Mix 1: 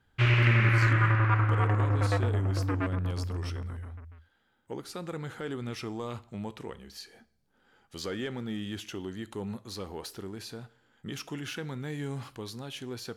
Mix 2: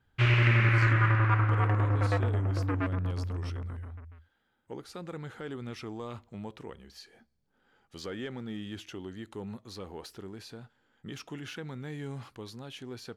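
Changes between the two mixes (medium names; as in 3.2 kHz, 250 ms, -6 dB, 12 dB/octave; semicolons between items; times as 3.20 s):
speech: add treble shelf 7.4 kHz -7.5 dB; reverb: off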